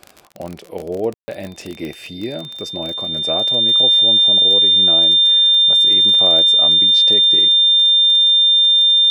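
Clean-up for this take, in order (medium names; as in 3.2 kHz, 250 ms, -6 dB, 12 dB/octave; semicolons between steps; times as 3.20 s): de-click; band-stop 3.6 kHz, Q 30; room tone fill 1.14–1.28 s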